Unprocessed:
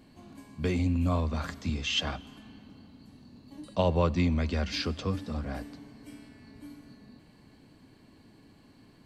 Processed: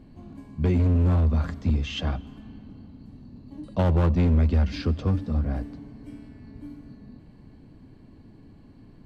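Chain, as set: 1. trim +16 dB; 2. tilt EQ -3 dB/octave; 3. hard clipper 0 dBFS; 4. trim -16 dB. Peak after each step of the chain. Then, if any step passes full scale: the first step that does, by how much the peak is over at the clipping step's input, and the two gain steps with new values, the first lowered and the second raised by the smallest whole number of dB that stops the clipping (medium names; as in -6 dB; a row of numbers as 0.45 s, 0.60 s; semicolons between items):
+2.0 dBFS, +8.0 dBFS, 0.0 dBFS, -16.0 dBFS; step 1, 8.0 dB; step 1 +8 dB, step 4 -8 dB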